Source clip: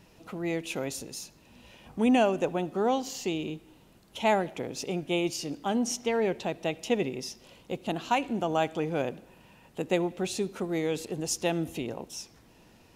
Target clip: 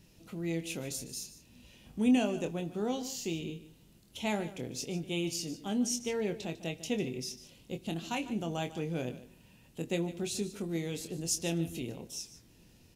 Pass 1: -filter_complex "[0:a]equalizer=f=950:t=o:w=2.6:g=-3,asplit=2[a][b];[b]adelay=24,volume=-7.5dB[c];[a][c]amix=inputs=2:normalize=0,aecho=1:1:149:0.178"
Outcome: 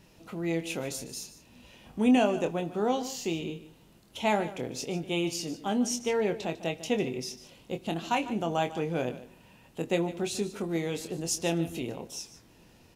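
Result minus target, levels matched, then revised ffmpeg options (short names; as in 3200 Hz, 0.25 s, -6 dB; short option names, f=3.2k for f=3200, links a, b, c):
1000 Hz band +5.5 dB
-filter_complex "[0:a]equalizer=f=950:t=o:w=2.6:g=-13.5,asplit=2[a][b];[b]adelay=24,volume=-7.5dB[c];[a][c]amix=inputs=2:normalize=0,aecho=1:1:149:0.178"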